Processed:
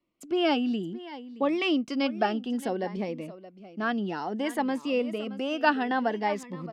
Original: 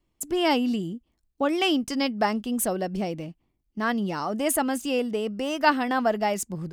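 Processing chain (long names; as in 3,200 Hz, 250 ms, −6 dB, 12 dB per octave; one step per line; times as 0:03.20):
three-way crossover with the lows and the highs turned down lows −20 dB, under 180 Hz, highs −23 dB, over 4,400 Hz
on a send: single-tap delay 622 ms −16 dB
on the sum: phaser whose notches keep moving one way rising 0.6 Hz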